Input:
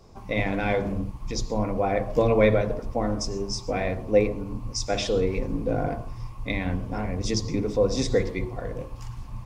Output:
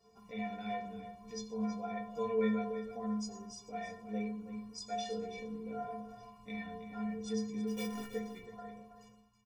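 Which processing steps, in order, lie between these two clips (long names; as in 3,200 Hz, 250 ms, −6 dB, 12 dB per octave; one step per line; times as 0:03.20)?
fade-out on the ending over 0.93 s
high-pass filter 68 Hz 12 dB per octave
parametric band 270 Hz −2.5 dB 0.77 octaves
in parallel at +1.5 dB: downward compressor, threshold −37 dBFS, peak gain reduction 20.5 dB
0:07.67–0:08.13: on the sum: sample-rate reduction 2,900 Hz, jitter 20%
stiff-string resonator 210 Hz, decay 0.54 s, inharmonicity 0.03
single-tap delay 325 ms −11.5 dB
level −2 dB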